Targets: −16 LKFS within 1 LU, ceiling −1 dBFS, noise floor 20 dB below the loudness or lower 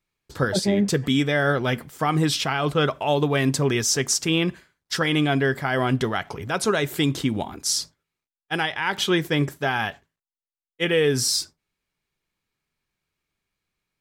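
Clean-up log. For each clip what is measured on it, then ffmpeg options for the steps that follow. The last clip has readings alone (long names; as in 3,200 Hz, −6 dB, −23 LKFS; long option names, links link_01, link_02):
integrated loudness −23.0 LKFS; sample peak −9.0 dBFS; target loudness −16.0 LKFS
→ -af "volume=7dB"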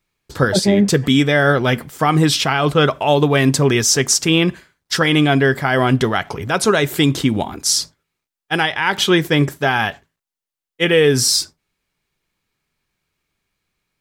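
integrated loudness −16.0 LKFS; sample peak −2.0 dBFS; background noise floor −87 dBFS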